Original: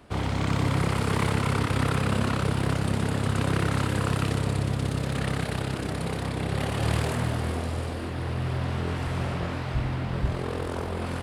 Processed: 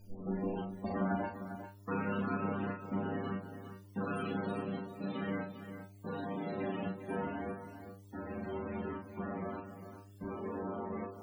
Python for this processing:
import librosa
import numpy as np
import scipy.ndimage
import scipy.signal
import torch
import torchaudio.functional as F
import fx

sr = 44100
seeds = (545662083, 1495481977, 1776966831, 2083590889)

p1 = fx.tape_start_head(x, sr, length_s=1.74)
p2 = fx.low_shelf_res(p1, sr, hz=150.0, db=-11.0, q=3.0)
p3 = fx.hum_notches(p2, sr, base_hz=60, count=8)
p4 = fx.step_gate(p3, sr, bpm=72, pattern='xxx.xx...x', floor_db=-60.0, edge_ms=4.5)
p5 = fx.stiff_resonator(p4, sr, f0_hz=95.0, decay_s=0.28, stiffness=0.002)
p6 = fx.quant_dither(p5, sr, seeds[0], bits=10, dither='triangular')
p7 = fx.dmg_buzz(p6, sr, base_hz=100.0, harmonics=30, level_db=-59.0, tilt_db=-9, odd_only=False)
p8 = fx.spec_topn(p7, sr, count=32)
p9 = fx.doubler(p8, sr, ms=37.0, db=-5.0)
p10 = p9 + fx.echo_single(p9, sr, ms=400, db=-10.5, dry=0)
y = F.gain(torch.from_numpy(p10), 1.0).numpy()